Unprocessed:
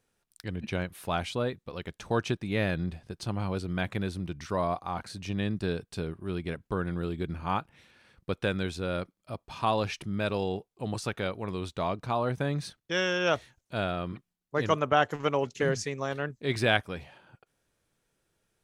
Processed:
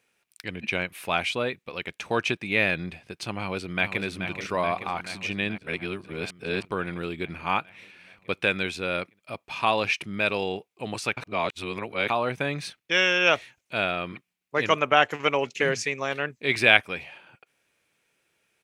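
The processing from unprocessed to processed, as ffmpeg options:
-filter_complex "[0:a]asplit=2[a][b];[b]afade=t=in:st=3.37:d=0.01,afade=t=out:st=4.03:d=0.01,aecho=0:1:430|860|1290|1720|2150|2580|3010|3440|3870|4300|4730|5160:0.375837|0.281878|0.211409|0.158556|0.118917|0.089188|0.066891|0.0501682|0.0376262|0.0282196|0.0211647|0.0158735[c];[a][c]amix=inputs=2:normalize=0,asplit=5[d][e][f][g][h];[d]atrim=end=5.582[i];[e]atrim=start=5.578:end=6.652,asetpts=PTS-STARTPTS,areverse[j];[f]atrim=start=6.648:end=11.172[k];[g]atrim=start=11.168:end=12.102,asetpts=PTS-STARTPTS,areverse[l];[h]atrim=start=12.098[m];[i][j]acrossfade=d=0.004:c1=hsin:c2=hsin[n];[n][k]acrossfade=d=0.004:c1=hsin:c2=hsin[o];[o][l]acrossfade=d=0.004:c1=hsin:c2=hsin[p];[p][m]acrossfade=d=0.004:c1=hsin:c2=hsin,highpass=f=290:p=1,equalizer=f=2.4k:t=o:w=0.64:g=11.5,volume=3.5dB"

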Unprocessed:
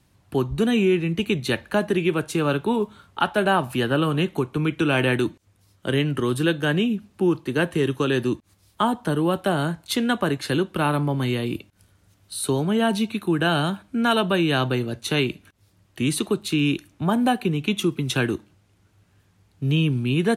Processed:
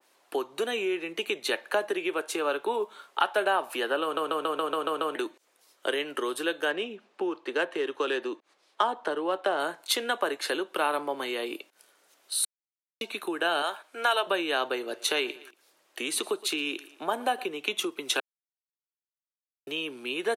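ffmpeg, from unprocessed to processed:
-filter_complex "[0:a]asettb=1/sr,asplit=3[a][b][c];[a]atrim=end=6.704[d];[b]atrim=start=6.7:end=9.6,asetpts=PTS-STARTPTS,afade=t=in:d=0.004:c=qsin,afade=t=out:st=2.896:d=0.004:c=qsin,adynamicsmooth=sensitivity=2:basefreq=4.6k[e];[c]atrim=start=9.596[f];[d][e]acrossfade=d=0.004:c1=hsin:c2=qsin[g];[g][f]acrossfade=d=0.004:c1=qsin:c2=hsin,asettb=1/sr,asplit=3[h][i][j];[h]atrim=end=13.624[k];[i]atrim=start=13.62:end=14.27,asetpts=PTS-STARTPTS,afade=t=in:d=0.004:c=qsin,afade=t=out:st=0.646:d=0.004:c=qsin,highpass=510[l];[j]atrim=start=14.266[m];[k][l]acrossfade=d=0.004:c1=hsin:c2=qsin[n];[n][m]acrossfade=d=0.004:c1=qsin:c2=hsin,asplit=3[o][p][q];[o]afade=t=out:st=14.9:d=0.02[r];[p]aecho=1:1:116|232:0.0891|0.0276,afade=t=in:st=14.9:d=0.02,afade=t=out:st=17.43:d=0.02[s];[q]afade=t=in:st=17.43:d=0.02[t];[r][s][t]amix=inputs=3:normalize=0,asplit=13[u][v][w][x][y][z][aa][ab][ac][ad][ae][af][ag];[u]atrim=end=4.172[ah];[v]atrim=start=4.028:end=4.172[ai];[w]atrim=start=4.028:end=4.172[aj];[x]atrim=start=4.028:end=4.172[ak];[y]atrim=start=4.028:end=4.172[al];[z]atrim=start=4.028:end=4.172[am];[aa]atrim=start=4.028:end=4.172[an];[ab]atrim=start=4.028:end=4.172[ao];[ac]atrim=start=5.148:end=12.45,asetpts=PTS-STARTPTS,afade=t=out:st=7.298:d=0.004:c=hsin[ap];[ad]atrim=start=12.45:end=13.01,asetpts=PTS-STARTPTS,volume=0[aq];[ae]atrim=start=13.01:end=18.2,asetpts=PTS-STARTPTS,afade=t=in:d=0.004:c=hsin,afade=t=out:st=5.186:d=0.004:c=hsin[ar];[af]atrim=start=18.2:end=19.67,asetpts=PTS-STARTPTS,volume=0[as];[ag]atrim=start=19.67,asetpts=PTS-STARTPTS,afade=t=in:d=0.004:c=hsin[at];[ah][ai]acrossfade=d=0.004:c1=hsin:c2=hsin[au];[au][aj]acrossfade=d=0.004:c1=hsin:c2=hsin[av];[av][ak]acrossfade=d=0.004:c1=hsin:c2=hsin[aw];[aw][al]acrossfade=d=0.004:c1=hsin:c2=hsin[ax];[ax][am]acrossfade=d=0.004:c1=hsin:c2=hsin[ay];[ay][an]acrossfade=d=0.004:c1=hsin:c2=hsin[az];[az][ao]acrossfade=d=0.004:c1=hsin:c2=hsin[ba];[ap][aq][ar][as][at]concat=n=5:v=0:a=1[bb];[ba][bb]acrossfade=d=0.004:c1=hsin:c2=hsin,acompressor=threshold=-25dB:ratio=3,highpass=f=410:w=0.5412,highpass=f=410:w=1.3066,adynamicequalizer=threshold=0.00891:dfrequency=2000:dqfactor=0.7:tfrequency=2000:tqfactor=0.7:attack=5:release=100:ratio=0.375:range=1.5:mode=cutabove:tftype=highshelf,volume=3dB"

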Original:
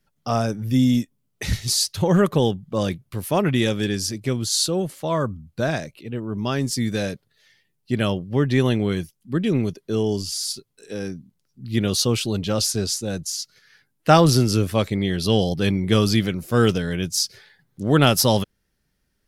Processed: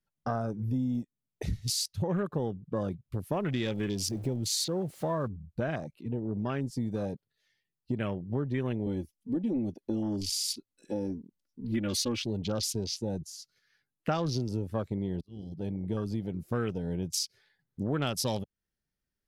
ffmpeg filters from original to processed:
-filter_complex "[0:a]asettb=1/sr,asplit=3[a][b][c];[a]atrim=end=3.324[d];[b]atrim=start=3.32:end=5.28,asetpts=PTS-STARTPTS,afade=t=in:d=0.004:c=qsin,afade=t=out:st=1.956:d=0.004:c=qsin,aeval=exprs='val(0)+0.5*0.0316*sgn(val(0))':c=same[e];[c]atrim=start=5.276[f];[d][e]acrossfade=d=0.004:c1=hsin:c2=qsin[g];[g][f]acrossfade=d=0.004:c1=qsin:c2=hsin,asettb=1/sr,asplit=3[h][i][j];[h]atrim=end=8.864[k];[i]atrim=start=8.86:end=12.22,asetpts=PTS-STARTPTS,afade=t=in:d=0.004:c=qsin,afade=t=out:st=3.356:d=0.004:c=qsin,aecho=1:1:3.5:1,atrim=end_sample=148176[l];[j]atrim=start=12.216[m];[k][l]acrossfade=d=0.004:c1=hsin:c2=qsin[n];[n][m]acrossfade=d=0.004:c1=qsin:c2=hsin,asplit=2[o][p];[o]atrim=end=15.21,asetpts=PTS-STARTPTS,afade=t=out:st=15.206:d=0.004:c=hsin[q];[p]atrim=start=15.21,asetpts=PTS-STARTPTS,afade=t=in:d=1.75[r];[q][r]concat=n=2:v=0:a=1,afwtdn=0.0316,acompressor=threshold=-30dB:ratio=4"

